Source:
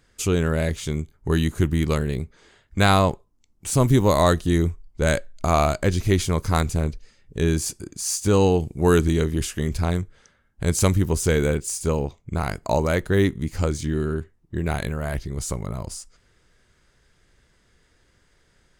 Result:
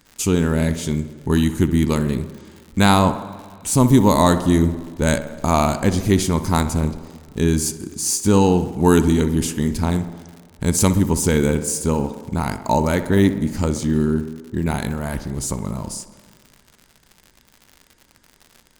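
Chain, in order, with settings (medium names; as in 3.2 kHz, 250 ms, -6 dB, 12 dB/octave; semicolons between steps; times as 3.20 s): treble shelf 4.2 kHz +7.5 dB; small resonant body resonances 230/900 Hz, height 10 dB, ringing for 25 ms; tape echo 63 ms, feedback 76%, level -11 dB, low-pass 2.3 kHz; on a send at -21.5 dB: reverberation RT60 2.7 s, pre-delay 80 ms; on the sum: crackle 120 per s -32 dBFS; trim -1 dB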